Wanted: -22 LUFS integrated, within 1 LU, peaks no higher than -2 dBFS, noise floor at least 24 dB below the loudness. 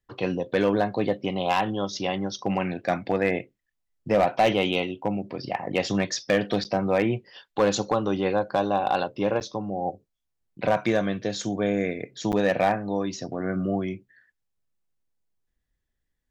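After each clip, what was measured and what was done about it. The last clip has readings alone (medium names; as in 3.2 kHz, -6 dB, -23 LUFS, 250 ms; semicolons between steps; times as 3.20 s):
clipped samples 0.3%; clipping level -13.5 dBFS; dropouts 3; longest dropout 8.8 ms; loudness -26.0 LUFS; peak level -13.5 dBFS; loudness target -22.0 LUFS
-> clip repair -13.5 dBFS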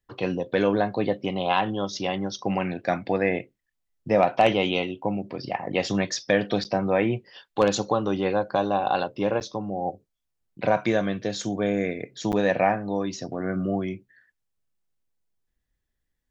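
clipped samples 0.0%; dropouts 3; longest dropout 8.8 ms
-> interpolate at 6.64/9.40/12.32 s, 8.8 ms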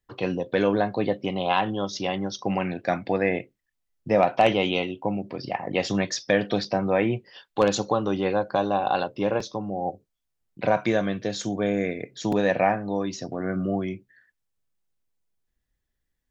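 dropouts 0; loudness -25.5 LUFS; peak level -4.5 dBFS; loudness target -22.0 LUFS
-> trim +3.5 dB; peak limiter -2 dBFS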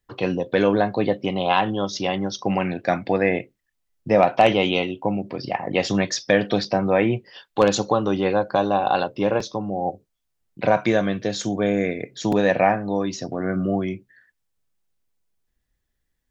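loudness -22.0 LUFS; peak level -2.0 dBFS; noise floor -76 dBFS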